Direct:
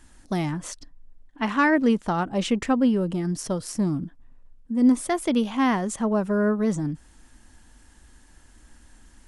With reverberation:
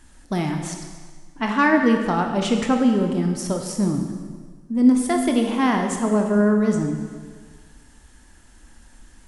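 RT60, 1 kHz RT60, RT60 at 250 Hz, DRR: 1.6 s, 1.6 s, 1.5 s, 3.0 dB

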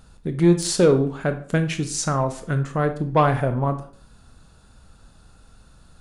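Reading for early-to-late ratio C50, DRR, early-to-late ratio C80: 11.5 dB, 8.0 dB, 16.0 dB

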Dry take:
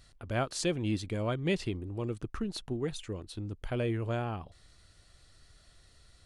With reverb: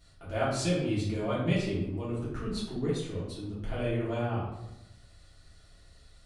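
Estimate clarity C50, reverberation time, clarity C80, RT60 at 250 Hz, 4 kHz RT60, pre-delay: 1.5 dB, 0.90 s, 5.5 dB, 1.1 s, 0.55 s, 3 ms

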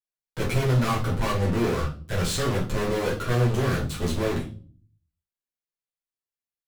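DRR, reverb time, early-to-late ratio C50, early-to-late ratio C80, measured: -6.0 dB, 0.40 s, 8.5 dB, 15.0 dB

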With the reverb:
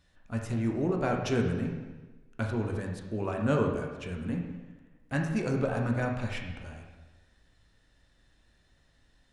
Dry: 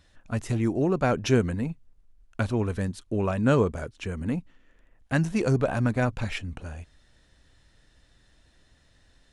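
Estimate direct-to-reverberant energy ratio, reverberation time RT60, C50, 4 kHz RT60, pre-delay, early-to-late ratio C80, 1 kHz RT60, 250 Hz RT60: 0.5 dB, 1.2 s, 4.0 dB, 1.1 s, 5 ms, 6.0 dB, 1.2 s, 1.3 s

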